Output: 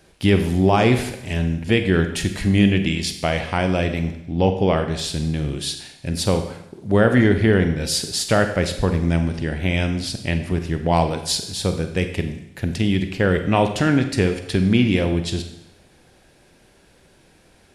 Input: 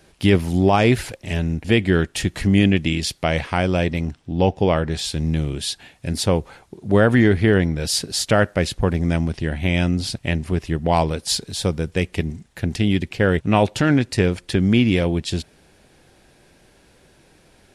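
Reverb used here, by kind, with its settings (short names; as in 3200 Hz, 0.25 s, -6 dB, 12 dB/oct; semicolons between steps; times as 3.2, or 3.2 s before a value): Schroeder reverb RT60 0.81 s, combs from 32 ms, DRR 7 dB; gain -1 dB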